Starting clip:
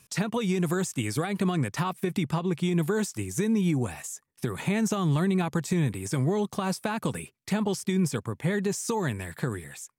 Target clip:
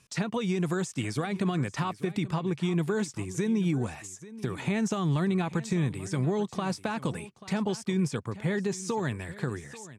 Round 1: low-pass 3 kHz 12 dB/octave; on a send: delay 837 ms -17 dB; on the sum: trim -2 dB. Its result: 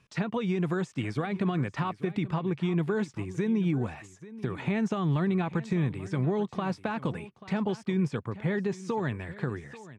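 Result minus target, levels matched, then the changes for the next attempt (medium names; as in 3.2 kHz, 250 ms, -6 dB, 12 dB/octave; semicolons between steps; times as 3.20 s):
8 kHz band -13.0 dB
change: low-pass 7.3 kHz 12 dB/octave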